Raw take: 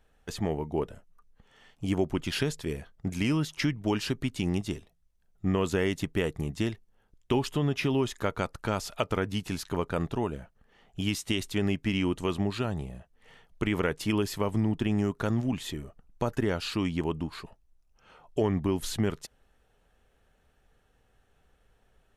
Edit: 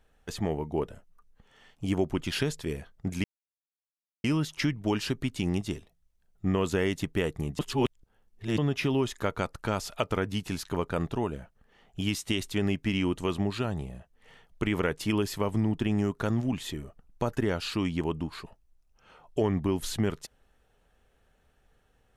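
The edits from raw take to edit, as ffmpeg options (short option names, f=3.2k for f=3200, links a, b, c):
-filter_complex "[0:a]asplit=4[a][b][c][d];[a]atrim=end=3.24,asetpts=PTS-STARTPTS,afade=t=out:st=3.236:d=0.004:c=hsin,apad=pad_dur=1[e];[b]atrim=start=3.24:end=6.592,asetpts=PTS-STARTPTS,afade=t=in:d=0.004:c=hsin[f];[c]atrim=start=6.588:end=7.582,asetpts=PTS-STARTPTS,areverse[g];[d]atrim=start=7.578[h];[e][f]concat=n=2:v=0:a=1[i];[i][g]acrossfade=d=0.004:c1=hsin:c2=hsin[j];[j][h]acrossfade=d=0.004:c1=hsin:c2=hsin"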